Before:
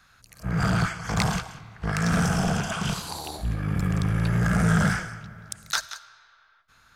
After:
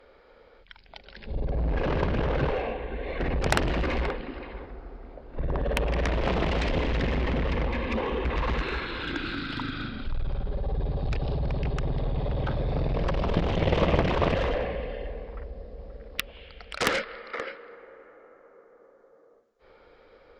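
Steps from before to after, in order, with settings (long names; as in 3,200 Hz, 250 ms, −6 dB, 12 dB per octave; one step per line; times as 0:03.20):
change of speed 0.341×
harmonic generator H 7 −9 dB, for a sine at −7 dBFS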